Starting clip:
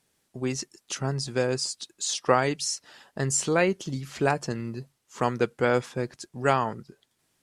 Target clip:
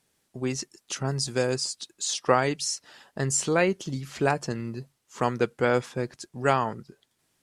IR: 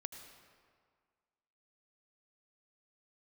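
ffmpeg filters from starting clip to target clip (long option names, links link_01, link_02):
-filter_complex "[0:a]asettb=1/sr,asplit=3[link_01][link_02][link_03];[link_01]atrim=end=1.034[link_04];[link_02]atrim=start=1.03:end=1.56,asetpts=PTS-STARTPTS,afade=type=in:duration=0.004:curve=qsin,afade=type=out:start_time=0.526:duration=0.004:curve=qsin,adynamicequalizer=threshold=0.00447:dfrequency=4800:dqfactor=0.7:tfrequency=4800:tqfactor=0.7:attack=5:release=100:ratio=0.375:range=4:mode=boostabove:tftype=highshelf[link_05];[link_03]atrim=start=1.556[link_06];[link_04][link_05]acrossfade=duration=0.004:curve1=hsin:curve2=qsin[link_07];[link_07][link_06]acrossfade=duration=0.004:curve1=qsin:curve2=hsin"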